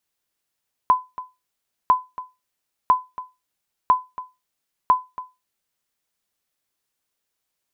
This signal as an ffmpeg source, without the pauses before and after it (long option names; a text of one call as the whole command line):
ffmpeg -f lavfi -i "aevalsrc='0.447*(sin(2*PI*1010*mod(t,1))*exp(-6.91*mod(t,1)/0.23)+0.15*sin(2*PI*1010*max(mod(t,1)-0.28,0))*exp(-6.91*max(mod(t,1)-0.28,0)/0.23))':duration=5:sample_rate=44100" out.wav